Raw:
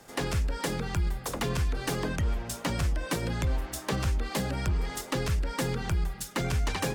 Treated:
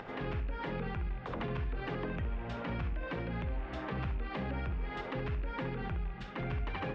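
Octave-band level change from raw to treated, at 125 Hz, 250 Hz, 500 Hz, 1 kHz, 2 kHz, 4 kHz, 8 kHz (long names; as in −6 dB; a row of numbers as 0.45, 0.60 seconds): −7.5 dB, −6.0 dB, −6.0 dB, −5.0 dB, −6.0 dB, −13.5 dB, below −35 dB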